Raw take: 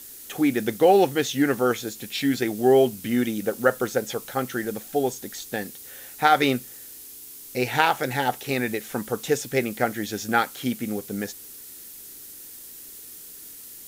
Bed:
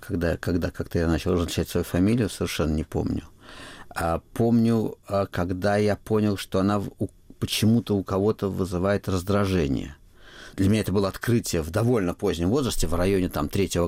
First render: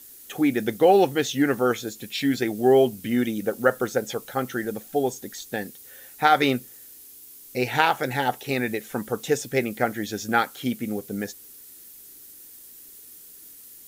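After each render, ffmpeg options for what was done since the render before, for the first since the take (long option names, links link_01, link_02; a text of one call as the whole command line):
ffmpeg -i in.wav -af "afftdn=noise_reduction=6:noise_floor=-43" out.wav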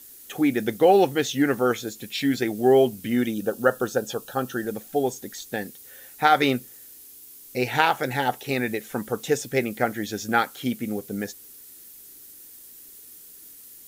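ffmpeg -i in.wav -filter_complex "[0:a]asettb=1/sr,asplit=3[link_01][link_02][link_03];[link_01]atrim=end=3.344[link_04];[link_02]atrim=start=3.34:end=4.67,asetpts=PTS-STARTPTS,afade=type=in:duration=0.004:curve=qsin,afade=type=out:start_time=1.326:duration=0.004:curve=qsin,asuperstop=centerf=2100:order=4:qfactor=3.4[link_05];[link_03]atrim=start=4.666[link_06];[link_04][link_05]acrossfade=duration=0.004:curve1=hsin:curve2=qsin[link_07];[link_07][link_06]acrossfade=duration=0.004:curve1=qsin:curve2=hsin" out.wav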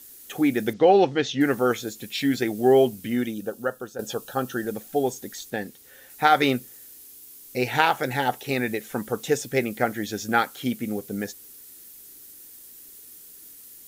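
ffmpeg -i in.wav -filter_complex "[0:a]asettb=1/sr,asplit=3[link_01][link_02][link_03];[link_01]atrim=end=0.734[link_04];[link_02]atrim=start=0.73:end=1.41,asetpts=PTS-STARTPTS,afade=type=in:duration=0.004:curve=qsin,afade=type=out:start_time=0.676:duration=0.004:curve=qsin,lowpass=frequency=5600:width=0.5412,lowpass=frequency=5600:width=1.3066[link_05];[link_03]atrim=start=1.406[link_06];[link_04][link_05]acrossfade=duration=0.004:curve1=hsin:curve2=qsin[link_07];[link_07][link_06]acrossfade=duration=0.004:curve1=qsin:curve2=hsin,asettb=1/sr,asplit=3[link_08][link_09][link_10];[link_08]atrim=end=5.504[link_11];[link_09]atrim=start=5.5:end=6.1,asetpts=PTS-STARTPTS,afade=type=in:duration=0.004:curve=qsin,afade=type=out:start_time=0.596:duration=0.004:curve=qsin,highshelf=frequency=5500:gain=-6.5[link_12];[link_10]atrim=start=6.096[link_13];[link_11][link_12]acrossfade=duration=0.004:curve1=hsin:curve2=qsin[link_14];[link_14][link_13]acrossfade=duration=0.004:curve1=qsin:curve2=hsin,asplit=2[link_15][link_16];[link_15]atrim=end=3.99,asetpts=PTS-STARTPTS,afade=type=out:start_time=2.84:duration=1.15:silence=0.223872[link_17];[link_16]atrim=start=3.99,asetpts=PTS-STARTPTS,afade=type=in:duration=0.004:curve=hsin:silence=0.223872[link_18];[link_17][link_18]concat=n=2:v=0:a=1" out.wav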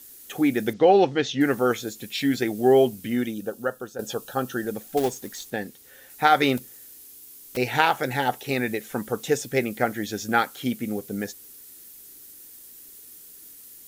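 ffmpeg -i in.wav -filter_complex "[0:a]asettb=1/sr,asplit=3[link_01][link_02][link_03];[link_01]atrim=end=4.974[link_04];[link_02]atrim=start=4.97:end=5.52,asetpts=PTS-STARTPTS,afade=type=in:duration=0.004:curve=qsin,afade=type=out:start_time=0.546:duration=0.004:curve=qsin,acrusher=bits=3:mode=log:mix=0:aa=0.000001[link_05];[link_03]atrim=start=5.516[link_06];[link_04][link_05]acrossfade=duration=0.004:curve1=hsin:curve2=qsin[link_07];[link_07][link_06]acrossfade=duration=0.004:curve1=qsin:curve2=hsin,asettb=1/sr,asplit=3[link_08][link_09][link_10];[link_08]atrim=end=6.574[link_11];[link_09]atrim=start=6.57:end=7.57,asetpts=PTS-STARTPTS,afade=type=in:duration=0.004:curve=qsin,afade=type=out:start_time=0.996:duration=0.004:curve=qsin,aeval=exprs='(mod(31.6*val(0)+1,2)-1)/31.6':channel_layout=same[link_12];[link_10]atrim=start=7.566[link_13];[link_11][link_12]acrossfade=duration=0.004:curve1=hsin:curve2=qsin[link_14];[link_14][link_13]acrossfade=duration=0.004:curve1=qsin:curve2=hsin" out.wav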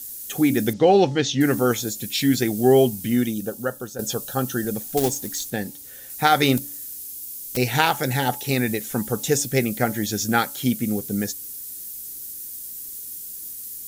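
ffmpeg -i in.wav -af "bass=frequency=250:gain=9,treble=frequency=4000:gain=11,bandreject=frequency=285.9:width_type=h:width=4,bandreject=frequency=571.8:width_type=h:width=4,bandreject=frequency=857.7:width_type=h:width=4" out.wav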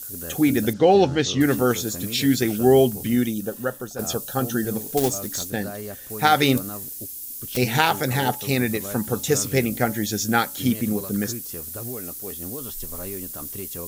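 ffmpeg -i in.wav -i bed.wav -filter_complex "[1:a]volume=-13dB[link_01];[0:a][link_01]amix=inputs=2:normalize=0" out.wav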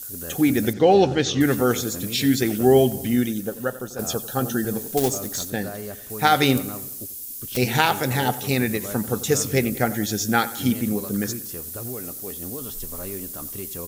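ffmpeg -i in.wav -filter_complex "[0:a]asplit=2[link_01][link_02];[link_02]adelay=91,lowpass=frequency=3600:poles=1,volume=-16dB,asplit=2[link_03][link_04];[link_04]adelay=91,lowpass=frequency=3600:poles=1,volume=0.53,asplit=2[link_05][link_06];[link_06]adelay=91,lowpass=frequency=3600:poles=1,volume=0.53,asplit=2[link_07][link_08];[link_08]adelay=91,lowpass=frequency=3600:poles=1,volume=0.53,asplit=2[link_09][link_10];[link_10]adelay=91,lowpass=frequency=3600:poles=1,volume=0.53[link_11];[link_01][link_03][link_05][link_07][link_09][link_11]amix=inputs=6:normalize=0" out.wav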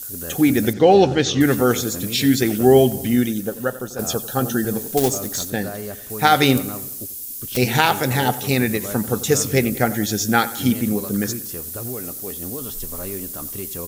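ffmpeg -i in.wav -af "volume=3dB,alimiter=limit=-1dB:level=0:latency=1" out.wav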